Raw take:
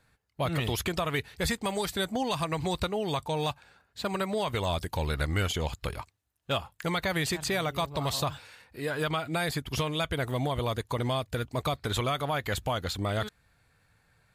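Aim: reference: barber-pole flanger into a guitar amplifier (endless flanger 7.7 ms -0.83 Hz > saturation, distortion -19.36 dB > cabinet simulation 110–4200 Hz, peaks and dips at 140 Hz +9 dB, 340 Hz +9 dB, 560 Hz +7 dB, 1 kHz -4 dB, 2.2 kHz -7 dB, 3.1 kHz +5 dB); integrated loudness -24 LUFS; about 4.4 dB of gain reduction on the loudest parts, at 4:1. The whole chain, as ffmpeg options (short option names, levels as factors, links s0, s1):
-filter_complex "[0:a]acompressor=threshold=0.0316:ratio=4,asplit=2[s0][s1];[s1]adelay=7.7,afreqshift=-0.83[s2];[s0][s2]amix=inputs=2:normalize=1,asoftclip=threshold=0.0398,highpass=110,equalizer=f=140:t=q:w=4:g=9,equalizer=f=340:t=q:w=4:g=9,equalizer=f=560:t=q:w=4:g=7,equalizer=f=1000:t=q:w=4:g=-4,equalizer=f=2200:t=q:w=4:g=-7,equalizer=f=3100:t=q:w=4:g=5,lowpass=f=4200:w=0.5412,lowpass=f=4200:w=1.3066,volume=3.98"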